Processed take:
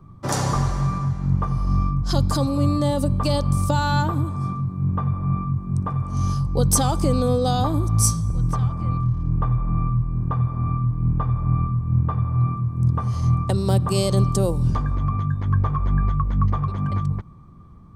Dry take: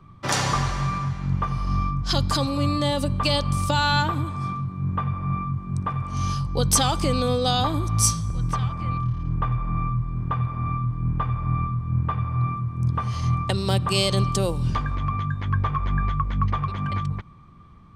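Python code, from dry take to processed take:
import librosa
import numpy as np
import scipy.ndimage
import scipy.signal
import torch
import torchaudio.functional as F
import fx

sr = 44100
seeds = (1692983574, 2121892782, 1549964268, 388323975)

y = fx.peak_eq(x, sr, hz=2700.0, db=-14.0, octaves=2.1)
y = y * 10.0 ** (4.0 / 20.0)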